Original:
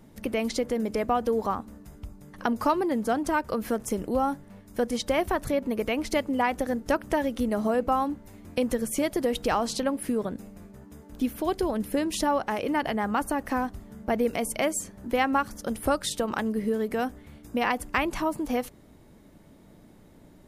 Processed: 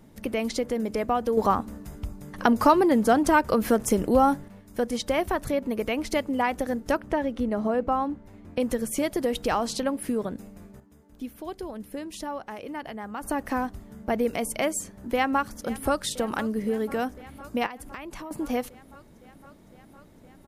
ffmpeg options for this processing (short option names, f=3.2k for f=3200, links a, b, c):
-filter_complex "[0:a]asettb=1/sr,asplit=3[a][b][c];[a]atrim=end=1.374[d];[b]atrim=start=1.37:end=4.48,asetpts=PTS-STARTPTS,afade=t=in:d=0.004:c=qsin,afade=t=out:st=3.106:d=0.004:c=qsin,acontrast=59[e];[c]atrim=start=4.476[f];[d][e]acrossfade=d=0.004:c1=hsin:c2=qsin[g];[g][f]acrossfade=d=0.004:c1=qsin:c2=hsin,asettb=1/sr,asplit=3[h][i][j];[h]atrim=end=7.004[k];[i]atrim=start=7:end=8.6,asetpts=PTS-STARTPTS,afade=t=in:d=0.004:c=qsin,afade=t=out:st=1.596:d=0.004:c=qsin,lowpass=f=2.3k:p=1[l];[j]atrim=start=8.596[m];[k][l]acrossfade=d=0.004:c1=hsin:c2=qsin[n];[n][m]acrossfade=d=0.004:c1=qsin:c2=hsin,asplit=2[o][p];[p]afade=t=in:st=14.97:d=0.01,afade=t=out:st=15.97:d=0.01,aecho=0:1:510|1020|1530|2040|2550|3060|3570|4080|4590|5100|5610|6120:0.133352|0.106682|0.0853454|0.0682763|0.054621|0.0436968|0.0349575|0.027966|0.0223728|0.0178982|0.0143186|0.0114549[q];[o][q]amix=inputs=2:normalize=0,asettb=1/sr,asplit=3[r][s][t];[r]atrim=end=17.664[u];[s]atrim=start=17.66:end=18.31,asetpts=PTS-STARTPTS,afade=t=in:d=0.004:c=qsin,afade=t=out:st=0.646:d=0.004:c=qsin,acompressor=threshold=-37dB:ratio=4:attack=3.2:release=140:knee=1:detection=peak[v];[t]atrim=start=18.306[w];[u][v]acrossfade=d=0.004:c1=hsin:c2=qsin[x];[x][w]acrossfade=d=0.004:c1=qsin:c2=hsin,asplit=3[y][z][aa];[y]atrim=end=10.802[ab];[z]atrim=start=10.798:end=13.232,asetpts=PTS-STARTPTS,volume=-9dB[ac];[aa]atrim=start=13.228[ad];[ab][ac]acrossfade=d=0.004:c1=hsin:c2=hsin[ae];[ae][ad]acrossfade=d=0.004:c1=hsin:c2=hsin"